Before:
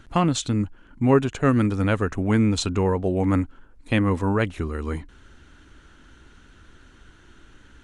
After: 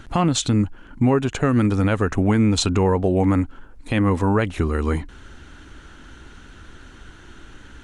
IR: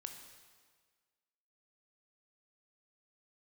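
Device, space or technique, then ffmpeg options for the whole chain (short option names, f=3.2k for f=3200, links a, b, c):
mastering chain: -af "equalizer=f=790:t=o:w=0.36:g=2.5,acompressor=threshold=-23dB:ratio=2.5,alimiter=level_in=15.5dB:limit=-1dB:release=50:level=0:latency=1,volume=-8dB"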